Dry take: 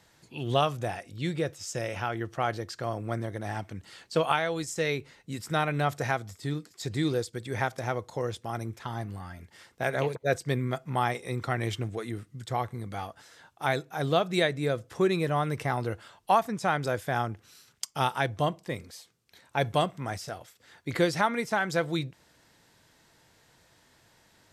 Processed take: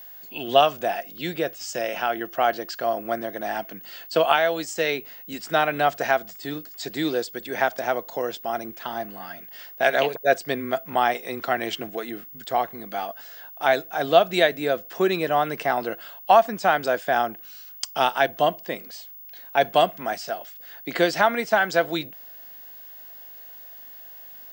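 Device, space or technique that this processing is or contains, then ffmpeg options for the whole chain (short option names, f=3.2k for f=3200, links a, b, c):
old television with a line whistle: -filter_complex "[0:a]asplit=3[a][b][c];[a]afade=t=out:st=9.21:d=0.02[d];[b]adynamicequalizer=threshold=0.00316:dfrequency=3600:dqfactor=0.82:tfrequency=3600:tqfactor=0.82:attack=5:release=100:ratio=0.375:range=3.5:mode=boostabove:tftype=bell,afade=t=in:st=9.21:d=0.02,afade=t=out:st=10.06:d=0.02[e];[c]afade=t=in:st=10.06:d=0.02[f];[d][e][f]amix=inputs=3:normalize=0,highpass=f=200:w=0.5412,highpass=f=200:w=1.3066,equalizer=f=680:t=q:w=4:g=9,equalizer=f=1.6k:t=q:w=4:g=5,equalizer=f=2.9k:t=q:w=4:g=7,equalizer=f=4.7k:t=q:w=4:g=4,lowpass=f=8.6k:w=0.5412,lowpass=f=8.6k:w=1.3066,aeval=exprs='val(0)+0.00708*sin(2*PI*15625*n/s)':c=same,volume=3dB"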